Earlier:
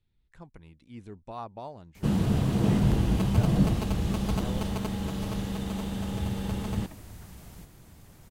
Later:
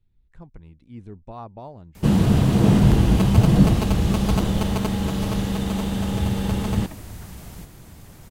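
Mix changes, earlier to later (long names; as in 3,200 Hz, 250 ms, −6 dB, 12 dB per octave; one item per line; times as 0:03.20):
speech: add spectral tilt −2 dB per octave
background +8.0 dB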